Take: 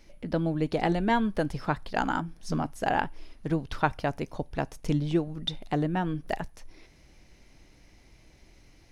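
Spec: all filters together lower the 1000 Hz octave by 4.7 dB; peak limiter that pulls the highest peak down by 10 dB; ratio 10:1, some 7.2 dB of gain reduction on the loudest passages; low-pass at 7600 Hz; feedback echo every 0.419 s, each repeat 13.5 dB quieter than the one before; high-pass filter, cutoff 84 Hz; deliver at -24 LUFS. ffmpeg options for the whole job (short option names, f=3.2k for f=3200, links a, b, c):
-af "highpass=84,lowpass=7.6k,equalizer=f=1k:t=o:g=-6.5,acompressor=threshold=-29dB:ratio=10,alimiter=level_in=4dB:limit=-24dB:level=0:latency=1,volume=-4dB,aecho=1:1:419|838:0.211|0.0444,volume=15dB"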